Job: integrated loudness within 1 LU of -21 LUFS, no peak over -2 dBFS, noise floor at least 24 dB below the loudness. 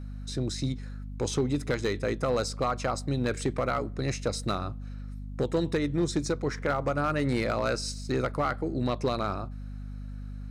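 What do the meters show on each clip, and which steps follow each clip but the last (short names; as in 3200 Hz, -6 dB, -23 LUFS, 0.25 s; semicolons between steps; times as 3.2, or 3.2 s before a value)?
clipped 0.8%; flat tops at -19.5 dBFS; hum 50 Hz; harmonics up to 250 Hz; hum level -36 dBFS; loudness -30.0 LUFS; peak -19.5 dBFS; loudness target -21.0 LUFS
-> clip repair -19.5 dBFS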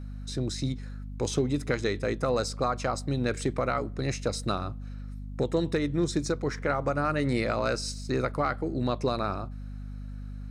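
clipped 0.0%; hum 50 Hz; harmonics up to 250 Hz; hum level -36 dBFS
-> de-hum 50 Hz, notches 5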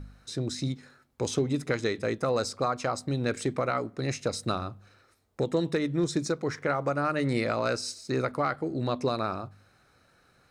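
hum none; loudness -30.0 LUFS; peak -12.5 dBFS; loudness target -21.0 LUFS
-> gain +9 dB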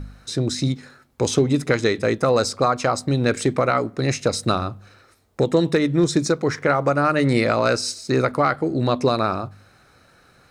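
loudness -21.0 LUFS; peak -3.5 dBFS; noise floor -55 dBFS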